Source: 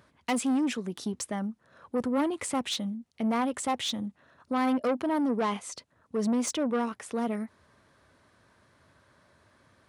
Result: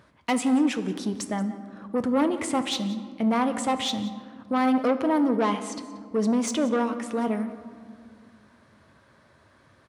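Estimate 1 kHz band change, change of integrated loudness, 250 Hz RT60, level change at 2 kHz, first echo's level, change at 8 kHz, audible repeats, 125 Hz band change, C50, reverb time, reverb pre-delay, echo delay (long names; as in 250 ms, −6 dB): +4.5 dB, +4.5 dB, 2.8 s, +4.0 dB, −18.5 dB, +1.0 dB, 1, can't be measured, 11.0 dB, 2.0 s, 6 ms, 180 ms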